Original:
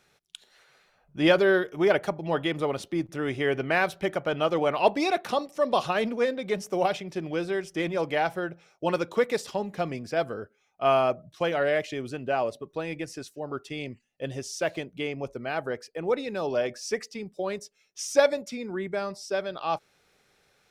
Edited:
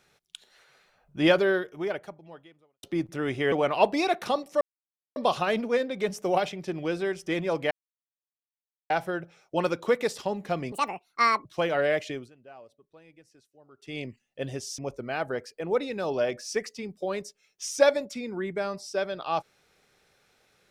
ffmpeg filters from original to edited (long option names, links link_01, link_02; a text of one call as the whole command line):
ffmpeg -i in.wav -filter_complex "[0:a]asplit=10[link_01][link_02][link_03][link_04][link_05][link_06][link_07][link_08][link_09][link_10];[link_01]atrim=end=2.83,asetpts=PTS-STARTPTS,afade=type=out:start_time=1.26:duration=1.57:curve=qua[link_11];[link_02]atrim=start=2.83:end=3.522,asetpts=PTS-STARTPTS,afade=type=in:duration=0.004:curve=hsin[link_12];[link_03]atrim=start=4.548:end=5.64,asetpts=PTS-STARTPTS,afade=type=out:start_time=1.088:duration=0.004:curve=hsin,apad=pad_dur=0.55[link_13];[link_04]atrim=start=5.64:end=8.19,asetpts=PTS-STARTPTS,afade=type=in:duration=0.004:curve=hsin,afade=type=out:start_time=2.546:duration=0.004:curve=hsin,apad=pad_dur=1.19[link_14];[link_05]atrim=start=8.19:end=10.014,asetpts=PTS-STARTPTS,afade=type=in:duration=0.004:curve=hsin[link_15];[link_06]atrim=start=10.01:end=11.28,asetpts=PTS-STARTPTS,asetrate=76293,aresample=44100[link_16];[link_07]atrim=start=11.276:end=12.13,asetpts=PTS-STARTPTS,afade=type=out:start_time=0.654:duration=0.2:silence=0.0841395[link_17];[link_08]atrim=start=12.13:end=13.6,asetpts=PTS-STARTPTS,volume=-21.5dB[link_18];[link_09]atrim=start=13.6:end=14.612,asetpts=PTS-STARTPTS,afade=type=in:duration=0.2:silence=0.0841395[link_19];[link_10]atrim=start=15.148[link_20];[link_11][link_12]concat=n=2:v=0:a=1[link_21];[link_13][link_14][link_15]concat=n=3:v=0:a=1[link_22];[link_21][link_22]acrossfade=duration=0.004:curve1=hsin:curve2=hsin[link_23];[link_23][link_16]acrossfade=duration=0.004:curve1=hsin:curve2=hsin[link_24];[link_17][link_18][link_19]concat=n=3:v=0:a=1[link_25];[link_24][link_25]acrossfade=duration=0.004:curve1=hsin:curve2=hsin[link_26];[link_26][link_20]acrossfade=duration=0.004:curve1=hsin:curve2=hsin" out.wav